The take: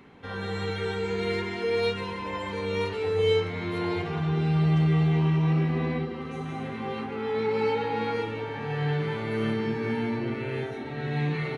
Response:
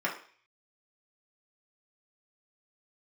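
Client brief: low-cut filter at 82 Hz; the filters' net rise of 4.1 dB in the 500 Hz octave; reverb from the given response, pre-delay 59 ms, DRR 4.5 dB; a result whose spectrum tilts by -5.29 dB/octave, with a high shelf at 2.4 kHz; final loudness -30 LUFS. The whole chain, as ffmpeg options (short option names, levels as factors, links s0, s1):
-filter_complex "[0:a]highpass=82,equalizer=f=500:t=o:g=5,highshelf=f=2400:g=-8,asplit=2[s0][s1];[1:a]atrim=start_sample=2205,adelay=59[s2];[s1][s2]afir=irnorm=-1:irlink=0,volume=0.211[s3];[s0][s3]amix=inputs=2:normalize=0,volume=0.708"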